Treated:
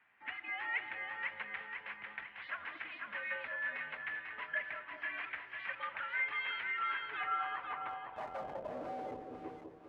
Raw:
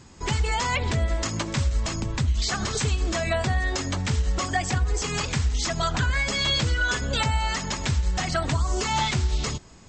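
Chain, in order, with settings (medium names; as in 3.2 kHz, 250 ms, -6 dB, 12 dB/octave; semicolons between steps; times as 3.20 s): mistuned SSB -120 Hz 160–3000 Hz; 7.89–9.27 s: Schmitt trigger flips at -30.5 dBFS; on a send: two-band feedback delay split 750 Hz, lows 199 ms, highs 497 ms, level -4 dB; on the sum: band-pass sweep 1.9 kHz -> 410 Hz, 6.85–9.39 s; trim -6 dB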